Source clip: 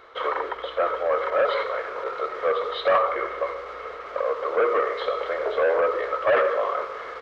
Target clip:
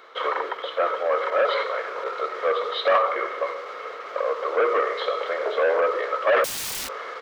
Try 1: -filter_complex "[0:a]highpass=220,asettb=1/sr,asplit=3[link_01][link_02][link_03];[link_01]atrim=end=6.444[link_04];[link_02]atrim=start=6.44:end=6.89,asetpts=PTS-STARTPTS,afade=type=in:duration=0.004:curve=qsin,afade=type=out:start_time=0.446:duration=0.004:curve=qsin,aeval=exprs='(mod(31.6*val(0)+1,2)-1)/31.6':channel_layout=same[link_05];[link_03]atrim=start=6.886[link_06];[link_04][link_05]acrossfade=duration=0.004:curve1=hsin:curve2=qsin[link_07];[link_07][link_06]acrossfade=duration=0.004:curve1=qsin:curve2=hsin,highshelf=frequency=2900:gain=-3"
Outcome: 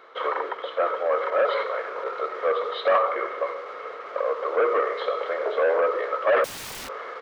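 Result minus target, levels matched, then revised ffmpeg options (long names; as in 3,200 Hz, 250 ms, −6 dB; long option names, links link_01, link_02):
8,000 Hz band −7.5 dB
-filter_complex "[0:a]highpass=220,asettb=1/sr,asplit=3[link_01][link_02][link_03];[link_01]atrim=end=6.444[link_04];[link_02]atrim=start=6.44:end=6.89,asetpts=PTS-STARTPTS,afade=type=in:duration=0.004:curve=qsin,afade=type=out:start_time=0.446:duration=0.004:curve=qsin,aeval=exprs='(mod(31.6*val(0)+1,2)-1)/31.6':channel_layout=same[link_05];[link_03]atrim=start=6.886[link_06];[link_04][link_05]acrossfade=duration=0.004:curve1=hsin:curve2=qsin[link_07];[link_07][link_06]acrossfade=duration=0.004:curve1=qsin:curve2=hsin,highshelf=frequency=2900:gain=6.5"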